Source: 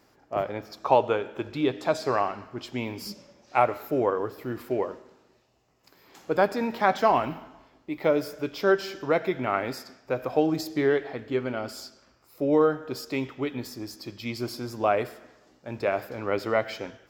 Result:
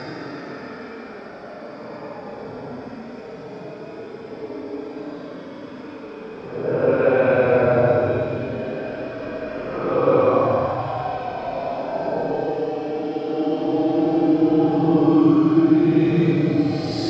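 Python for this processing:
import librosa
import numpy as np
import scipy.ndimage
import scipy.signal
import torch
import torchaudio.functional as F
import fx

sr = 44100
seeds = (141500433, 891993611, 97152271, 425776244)

p1 = fx.env_lowpass(x, sr, base_hz=510.0, full_db=-21.5)
p2 = fx.over_compress(p1, sr, threshold_db=-25.0, ratio=-0.5)
p3 = p2 + fx.echo_diffused(p2, sr, ms=1761, feedback_pct=53, wet_db=-13.0, dry=0)
p4 = fx.paulstretch(p3, sr, seeds[0], factor=21.0, window_s=0.05, from_s=9.78)
p5 = fx.air_absorb(p4, sr, metres=150.0)
y = p5 * librosa.db_to_amplitude(8.5)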